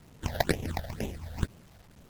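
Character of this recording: aliases and images of a low sample rate 1200 Hz, jitter 20%; phasing stages 8, 2.1 Hz, lowest notch 310–1500 Hz; a quantiser's noise floor 10-bit, dither none; MP3

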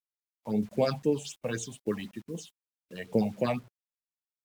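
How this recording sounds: phasing stages 6, 3.9 Hz, lowest notch 340–1400 Hz; a quantiser's noise floor 10-bit, dither none; tremolo saw down 1.6 Hz, depth 45%; Vorbis

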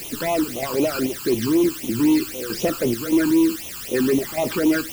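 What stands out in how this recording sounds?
chopped level 1.6 Hz, depth 60%, duty 70%; a quantiser's noise floor 6-bit, dither triangular; phasing stages 12, 3.9 Hz, lowest notch 610–1600 Hz

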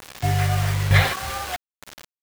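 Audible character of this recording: chopped level 1.1 Hz, depth 65%, duty 25%; a quantiser's noise floor 6-bit, dither none

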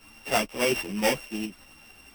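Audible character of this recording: a buzz of ramps at a fixed pitch in blocks of 16 samples; tremolo saw up 11 Hz, depth 40%; a shimmering, thickened sound

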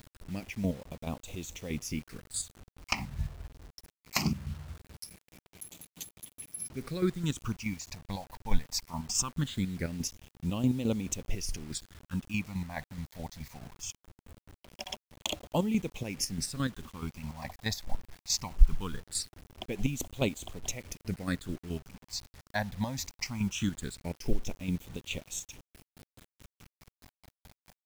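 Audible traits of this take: phasing stages 8, 0.21 Hz, lowest notch 370–1600 Hz; chopped level 4.7 Hz, depth 60%, duty 35%; a quantiser's noise floor 10-bit, dither none

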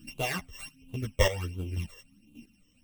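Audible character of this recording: a buzz of ramps at a fixed pitch in blocks of 16 samples; phasing stages 12, 1.4 Hz, lowest notch 240–1800 Hz; chopped level 1.7 Hz, depth 65%, duty 15%; a shimmering, thickened sound

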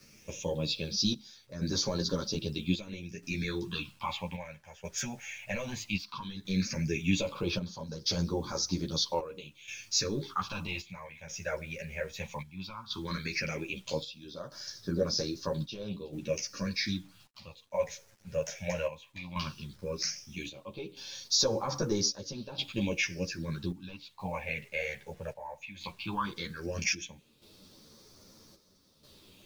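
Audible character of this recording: phasing stages 6, 0.15 Hz, lowest notch 290–2600 Hz; a quantiser's noise floor 10-bit, dither none; chopped level 0.62 Hz, depth 65%, duty 70%; a shimmering, thickened sound

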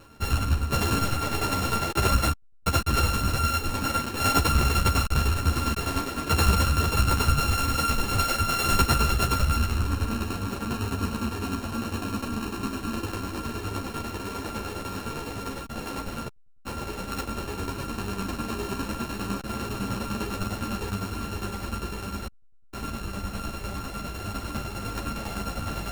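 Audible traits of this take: a buzz of ramps at a fixed pitch in blocks of 32 samples; tremolo saw down 9.9 Hz, depth 60%; a shimmering, thickened sound

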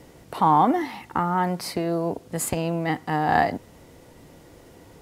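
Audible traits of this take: noise floor -50 dBFS; spectral tilt -5.5 dB/oct

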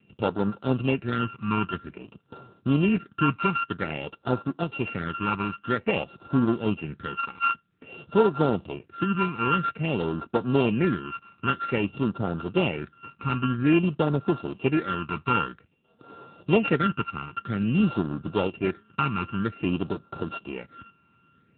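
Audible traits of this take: a buzz of ramps at a fixed pitch in blocks of 32 samples; phasing stages 12, 0.51 Hz, lowest notch 580–2400 Hz; AMR-NB

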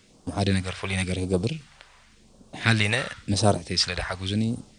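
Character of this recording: phasing stages 2, 0.93 Hz, lowest notch 230–2000 Hz

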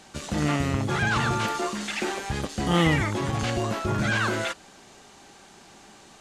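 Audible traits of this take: noise floor -51 dBFS; spectral tilt -5.0 dB/oct

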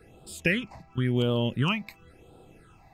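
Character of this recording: phasing stages 8, 0.95 Hz, lowest notch 410–1900 Hz

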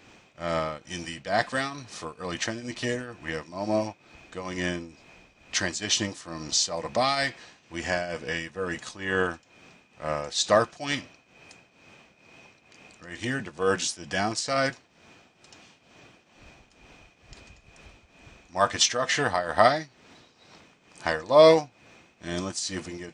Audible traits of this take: tremolo triangle 2.2 Hz, depth 80%

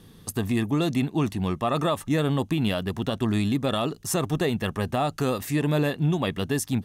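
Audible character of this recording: noise floor -50 dBFS; spectral tilt -6.0 dB/oct

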